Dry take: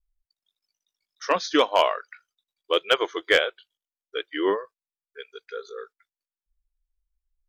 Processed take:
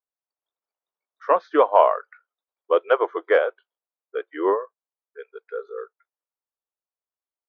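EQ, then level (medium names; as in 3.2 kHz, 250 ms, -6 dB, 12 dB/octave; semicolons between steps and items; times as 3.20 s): Butterworth band-pass 710 Hz, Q 0.83; +5.5 dB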